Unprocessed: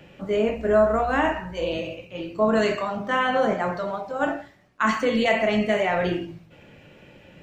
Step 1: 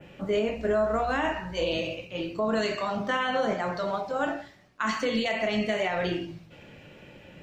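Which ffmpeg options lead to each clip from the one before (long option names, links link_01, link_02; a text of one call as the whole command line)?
ffmpeg -i in.wav -af "adynamicequalizer=threshold=0.00501:dfrequency=4600:dqfactor=0.97:tfrequency=4600:tqfactor=0.97:attack=5:release=100:ratio=0.375:range=4:mode=boostabove:tftype=bell,alimiter=limit=-17.5dB:level=0:latency=1:release=347" out.wav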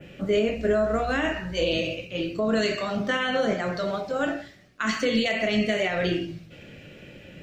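ffmpeg -i in.wav -af "equalizer=frequency=930:width=2.2:gain=-11.5,volume=4.5dB" out.wav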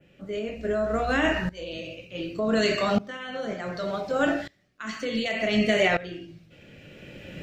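ffmpeg -i in.wav -af "aeval=exprs='val(0)*pow(10,-20*if(lt(mod(-0.67*n/s,1),2*abs(-0.67)/1000),1-mod(-0.67*n/s,1)/(2*abs(-0.67)/1000),(mod(-0.67*n/s,1)-2*abs(-0.67)/1000)/(1-2*abs(-0.67)/1000))/20)':channel_layout=same,volume=6dB" out.wav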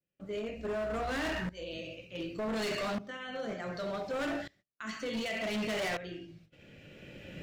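ffmpeg -i in.wav -af "agate=range=-28dB:threshold=-52dB:ratio=16:detection=peak,volume=26dB,asoftclip=hard,volume=-26dB,volume=-5.5dB" out.wav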